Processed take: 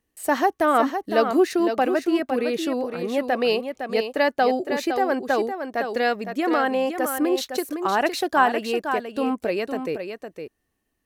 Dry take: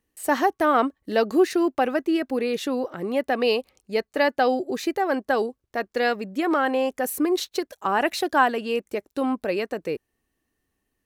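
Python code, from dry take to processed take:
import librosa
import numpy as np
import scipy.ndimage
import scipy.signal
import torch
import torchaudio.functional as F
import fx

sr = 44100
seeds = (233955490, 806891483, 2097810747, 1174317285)

y = fx.peak_eq(x, sr, hz=680.0, db=3.0, octaves=0.22)
y = y + 10.0 ** (-7.5 / 20.0) * np.pad(y, (int(510 * sr / 1000.0), 0))[:len(y)]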